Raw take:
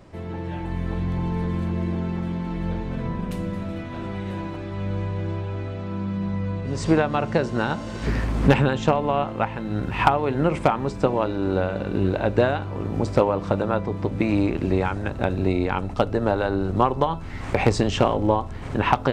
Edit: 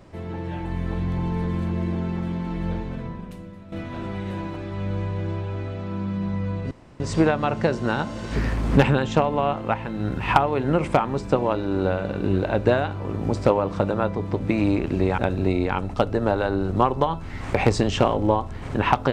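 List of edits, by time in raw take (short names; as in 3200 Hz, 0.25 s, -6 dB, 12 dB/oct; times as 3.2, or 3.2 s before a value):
2.76–3.72 fade out quadratic, to -13.5 dB
6.71 insert room tone 0.29 s
14.89–15.18 cut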